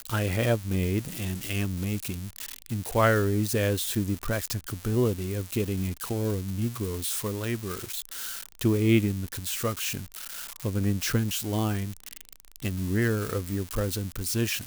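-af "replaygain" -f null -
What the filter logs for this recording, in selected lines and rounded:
track_gain = +9.6 dB
track_peak = 0.244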